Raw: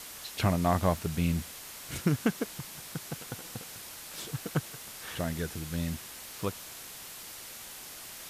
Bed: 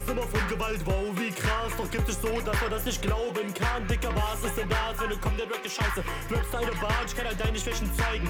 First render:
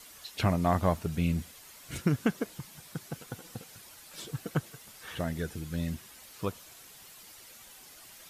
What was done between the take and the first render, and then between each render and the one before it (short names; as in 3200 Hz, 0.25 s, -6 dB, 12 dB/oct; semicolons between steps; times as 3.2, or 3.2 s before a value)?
denoiser 9 dB, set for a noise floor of -45 dBFS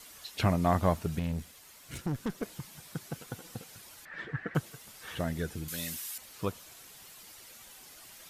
1.19–2.43 tube stage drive 28 dB, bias 0.6; 4.05–4.55 synth low-pass 1800 Hz, resonance Q 11; 5.68–6.18 tilt +4 dB/oct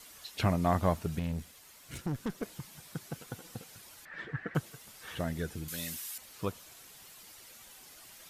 gain -1.5 dB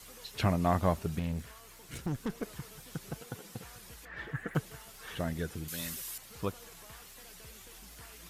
add bed -26.5 dB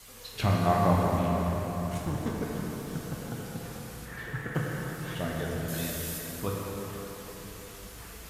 plate-style reverb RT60 4.8 s, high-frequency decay 0.55×, DRR -3.5 dB